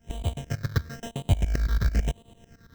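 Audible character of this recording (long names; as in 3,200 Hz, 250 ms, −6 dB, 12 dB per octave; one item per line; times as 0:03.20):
a buzz of ramps at a fixed pitch in blocks of 64 samples
tremolo saw up 9 Hz, depth 90%
aliases and images of a low sample rate 2,300 Hz, jitter 0%
phaser sweep stages 6, 1 Hz, lowest notch 730–1,500 Hz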